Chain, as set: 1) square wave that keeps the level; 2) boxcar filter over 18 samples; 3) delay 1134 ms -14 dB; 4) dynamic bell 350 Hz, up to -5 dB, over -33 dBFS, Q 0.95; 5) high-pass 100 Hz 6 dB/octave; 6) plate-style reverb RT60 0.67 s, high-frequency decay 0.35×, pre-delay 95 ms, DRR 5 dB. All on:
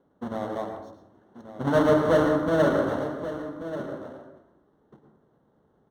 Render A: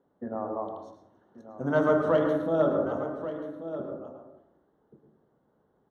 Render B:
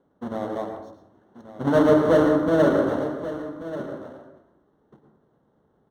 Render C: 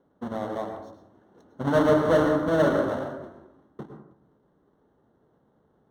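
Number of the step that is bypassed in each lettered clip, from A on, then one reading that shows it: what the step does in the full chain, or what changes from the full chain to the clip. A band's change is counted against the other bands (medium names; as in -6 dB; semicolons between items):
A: 1, distortion -5 dB; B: 4, loudness change +3.0 LU; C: 3, momentary loudness spread change +4 LU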